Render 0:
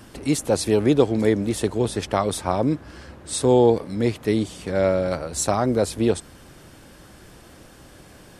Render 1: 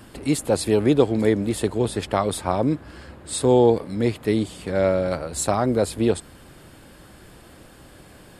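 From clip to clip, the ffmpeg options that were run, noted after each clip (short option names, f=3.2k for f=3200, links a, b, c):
-af "equalizer=f=5.9k:t=o:w=0.2:g=-11"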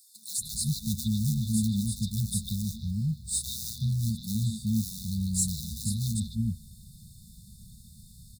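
-filter_complex "[0:a]acrusher=bits=4:mode=log:mix=0:aa=0.000001,afftfilt=real='re*(1-between(b*sr/4096,230,3500))':imag='im*(1-between(b*sr/4096,230,3500))':win_size=4096:overlap=0.75,acrossover=split=290|4000[a][b][c];[b]adelay=150[d];[a]adelay=380[e];[e][d][c]amix=inputs=3:normalize=0"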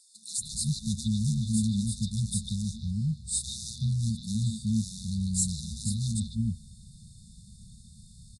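-af "aresample=22050,aresample=44100"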